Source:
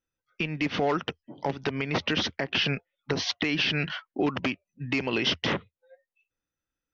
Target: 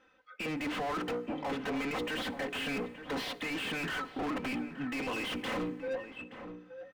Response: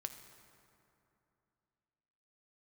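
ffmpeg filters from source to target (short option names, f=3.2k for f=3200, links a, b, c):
-filter_complex "[0:a]lowpass=3.4k,bandreject=f=60:t=h:w=6,bandreject=f=120:t=h:w=6,bandreject=f=180:t=h:w=6,bandreject=f=240:t=h:w=6,bandreject=f=300:t=h:w=6,bandreject=f=360:t=h:w=6,bandreject=f=420:t=h:w=6,bandreject=f=480:t=h:w=6,aecho=1:1:3.9:0.7,areverse,acompressor=threshold=-41dB:ratio=6,areverse,asplit=2[a][b];[b]highpass=f=720:p=1,volume=33dB,asoftclip=type=tanh:threshold=-29dB[c];[a][c]amix=inputs=2:normalize=0,lowpass=f=1.5k:p=1,volume=-6dB,asoftclip=type=hard:threshold=-34dB,asplit=2[d][e];[e]adelay=874.6,volume=-10dB,highshelf=f=4k:g=-19.7[f];[d][f]amix=inputs=2:normalize=0,asplit=2[g][h];[1:a]atrim=start_sample=2205,highshelf=f=6k:g=10.5[i];[h][i]afir=irnorm=-1:irlink=0,volume=-5.5dB[j];[g][j]amix=inputs=2:normalize=0"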